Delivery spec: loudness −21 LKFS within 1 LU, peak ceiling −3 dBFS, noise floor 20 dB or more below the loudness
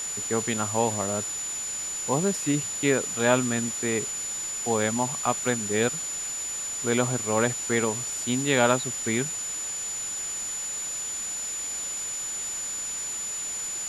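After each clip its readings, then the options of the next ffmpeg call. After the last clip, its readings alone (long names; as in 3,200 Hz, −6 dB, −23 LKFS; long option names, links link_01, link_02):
interfering tone 7,000 Hz; level of the tone −30 dBFS; background noise floor −33 dBFS; target noise floor −47 dBFS; integrated loudness −26.5 LKFS; sample peak −5.0 dBFS; target loudness −21.0 LKFS
→ -af "bandreject=frequency=7000:width=30"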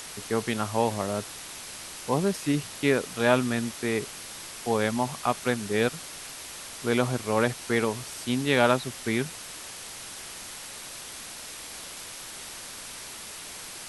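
interfering tone none found; background noise floor −41 dBFS; target noise floor −49 dBFS
→ -af "afftdn=noise_reduction=8:noise_floor=-41"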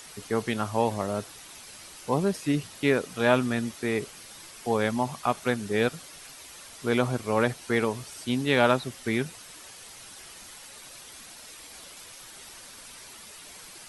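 background noise floor −47 dBFS; target noise floor −48 dBFS
→ -af "afftdn=noise_reduction=6:noise_floor=-47"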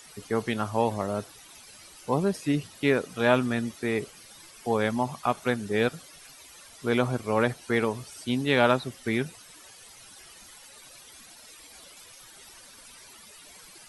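background noise floor −50 dBFS; integrated loudness −27.5 LKFS; sample peak −5.5 dBFS; target loudness −21.0 LKFS
→ -af "volume=6.5dB,alimiter=limit=-3dB:level=0:latency=1"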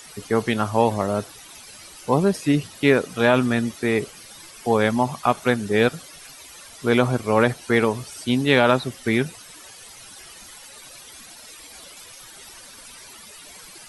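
integrated loudness −21.5 LKFS; sample peak −3.0 dBFS; background noise floor −44 dBFS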